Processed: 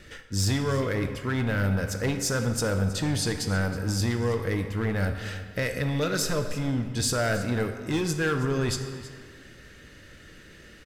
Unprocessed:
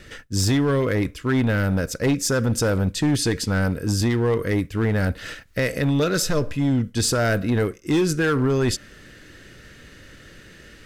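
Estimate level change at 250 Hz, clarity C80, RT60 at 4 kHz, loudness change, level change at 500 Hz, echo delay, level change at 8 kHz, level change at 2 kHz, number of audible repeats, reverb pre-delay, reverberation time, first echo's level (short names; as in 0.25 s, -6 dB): -7.0 dB, 8.5 dB, 1.2 s, -5.5 dB, -6.0 dB, 0.321 s, -4.0 dB, -4.0 dB, 1, 5 ms, 1.8 s, -16.5 dB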